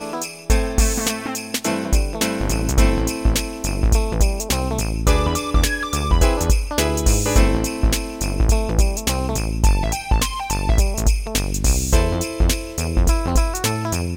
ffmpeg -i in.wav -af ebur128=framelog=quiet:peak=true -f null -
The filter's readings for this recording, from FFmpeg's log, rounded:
Integrated loudness:
  I:         -20.2 LUFS
  Threshold: -30.2 LUFS
Loudness range:
  LRA:         1.6 LU
  Threshold: -40.1 LUFS
  LRA low:   -20.8 LUFS
  LRA high:  -19.1 LUFS
True peak:
  Peak:       -1.7 dBFS